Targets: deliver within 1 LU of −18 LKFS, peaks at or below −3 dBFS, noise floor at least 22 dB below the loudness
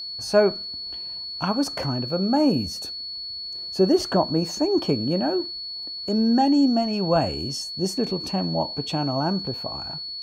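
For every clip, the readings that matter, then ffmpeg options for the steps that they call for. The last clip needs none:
interfering tone 4,400 Hz; level of the tone −31 dBFS; integrated loudness −24.0 LKFS; sample peak −7.0 dBFS; target loudness −18.0 LKFS
→ -af "bandreject=frequency=4400:width=30"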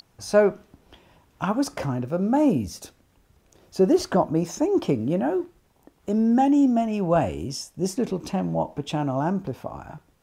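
interfering tone none found; integrated loudness −23.5 LKFS; sample peak −7.0 dBFS; target loudness −18.0 LKFS
→ -af "volume=5.5dB,alimiter=limit=-3dB:level=0:latency=1"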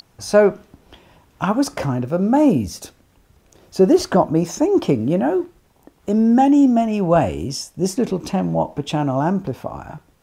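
integrated loudness −18.5 LKFS; sample peak −3.0 dBFS; background noise floor −57 dBFS

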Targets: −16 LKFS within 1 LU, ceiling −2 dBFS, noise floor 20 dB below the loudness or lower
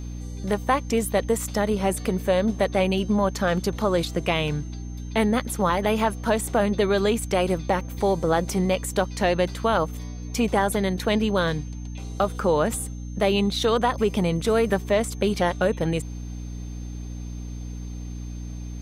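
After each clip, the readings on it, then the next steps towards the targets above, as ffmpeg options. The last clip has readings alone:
mains hum 60 Hz; hum harmonics up to 300 Hz; level of the hum −31 dBFS; interfering tone 6,300 Hz; level of the tone −51 dBFS; integrated loudness −24.0 LKFS; sample peak −8.0 dBFS; target loudness −16.0 LKFS
→ -af "bandreject=frequency=60:width_type=h:width=6,bandreject=frequency=120:width_type=h:width=6,bandreject=frequency=180:width_type=h:width=6,bandreject=frequency=240:width_type=h:width=6,bandreject=frequency=300:width_type=h:width=6"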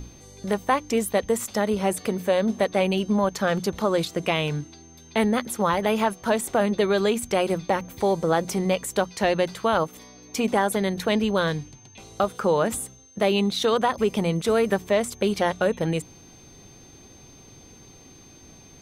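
mains hum none found; interfering tone 6,300 Hz; level of the tone −51 dBFS
→ -af "bandreject=frequency=6300:width=30"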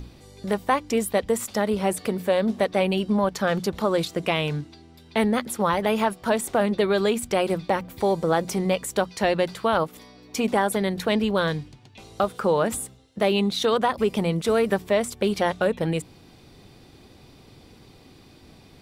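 interfering tone none found; integrated loudness −24.0 LKFS; sample peak −8.5 dBFS; target loudness −16.0 LKFS
→ -af "volume=8dB,alimiter=limit=-2dB:level=0:latency=1"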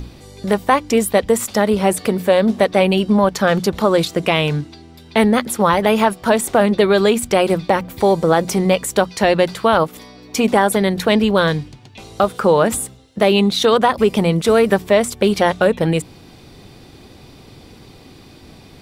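integrated loudness −16.5 LKFS; sample peak −2.0 dBFS; background noise floor −43 dBFS

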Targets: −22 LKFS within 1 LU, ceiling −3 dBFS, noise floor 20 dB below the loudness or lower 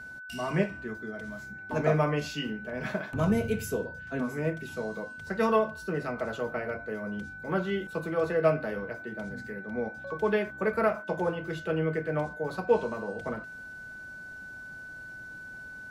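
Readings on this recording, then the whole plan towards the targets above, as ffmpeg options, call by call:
interfering tone 1,500 Hz; level of the tone −41 dBFS; integrated loudness −31.0 LKFS; sample peak −11.0 dBFS; target loudness −22.0 LKFS
→ -af "bandreject=frequency=1500:width=30"
-af "volume=9dB,alimiter=limit=-3dB:level=0:latency=1"

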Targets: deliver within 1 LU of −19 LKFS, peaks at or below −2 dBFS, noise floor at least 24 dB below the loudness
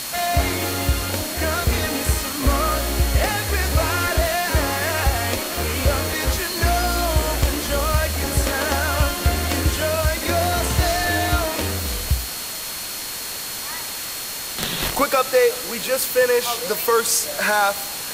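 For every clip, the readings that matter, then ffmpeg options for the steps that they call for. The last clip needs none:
interfering tone 4,300 Hz; level of the tone −36 dBFS; background noise floor −30 dBFS; target noise floor −45 dBFS; integrated loudness −21.0 LKFS; sample peak −1.5 dBFS; target loudness −19.0 LKFS
→ -af "bandreject=frequency=4300:width=30"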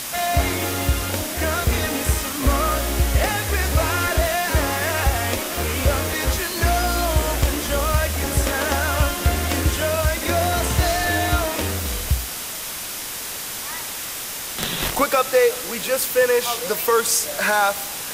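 interfering tone none found; background noise floor −30 dBFS; target noise floor −45 dBFS
→ -af "afftdn=noise_reduction=15:noise_floor=-30"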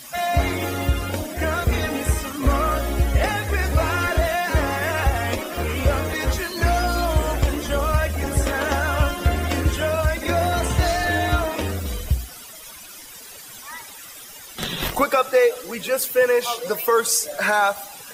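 background noise floor −40 dBFS; target noise floor −46 dBFS
→ -af "afftdn=noise_reduction=6:noise_floor=-40"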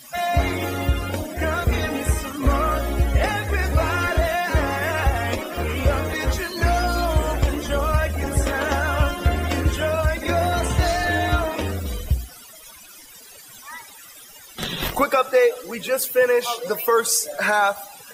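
background noise floor −44 dBFS; target noise floor −46 dBFS
→ -af "afftdn=noise_reduction=6:noise_floor=-44"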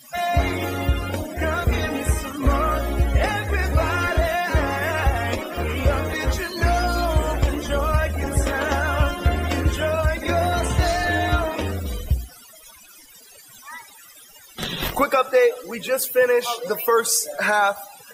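background noise floor −47 dBFS; integrated loudness −22.0 LKFS; sample peak −6.0 dBFS; target loudness −19.0 LKFS
→ -af "volume=3dB"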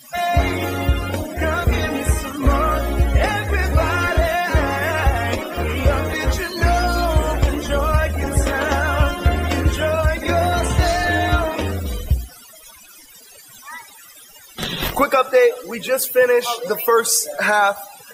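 integrated loudness −19.0 LKFS; sample peak −3.0 dBFS; background noise floor −44 dBFS

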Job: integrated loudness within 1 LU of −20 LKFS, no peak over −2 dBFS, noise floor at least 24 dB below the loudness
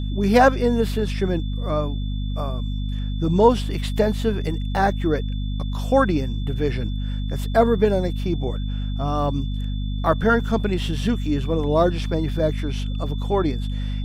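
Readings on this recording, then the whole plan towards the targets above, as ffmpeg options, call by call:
mains hum 50 Hz; hum harmonics up to 250 Hz; level of the hum −23 dBFS; interfering tone 3,500 Hz; level of the tone −42 dBFS; integrated loudness −22.5 LKFS; sample peak −3.0 dBFS; target loudness −20.0 LKFS
→ -af "bandreject=frequency=50:width_type=h:width=4,bandreject=frequency=100:width_type=h:width=4,bandreject=frequency=150:width_type=h:width=4,bandreject=frequency=200:width_type=h:width=4,bandreject=frequency=250:width_type=h:width=4"
-af "bandreject=frequency=3500:width=30"
-af "volume=2.5dB,alimiter=limit=-2dB:level=0:latency=1"

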